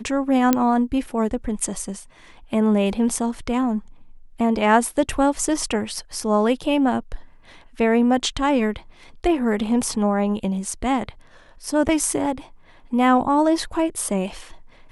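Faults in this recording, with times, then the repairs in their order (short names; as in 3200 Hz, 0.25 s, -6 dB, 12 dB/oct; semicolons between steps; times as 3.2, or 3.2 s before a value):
0.53 pop -3 dBFS
11.88–11.89 gap 8 ms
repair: de-click; interpolate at 11.88, 8 ms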